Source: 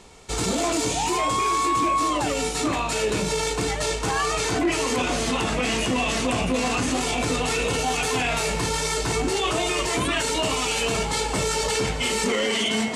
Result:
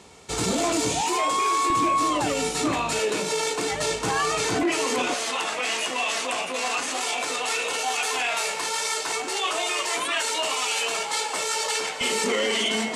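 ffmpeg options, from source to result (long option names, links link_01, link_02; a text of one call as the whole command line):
ffmpeg -i in.wav -af "asetnsamples=nb_out_samples=441:pad=0,asendcmd='1.01 highpass f 330;1.7 highpass f 99;2.99 highpass f 290;3.72 highpass f 120;4.63 highpass f 270;5.14 highpass f 630;12.01 highpass f 250',highpass=86" out.wav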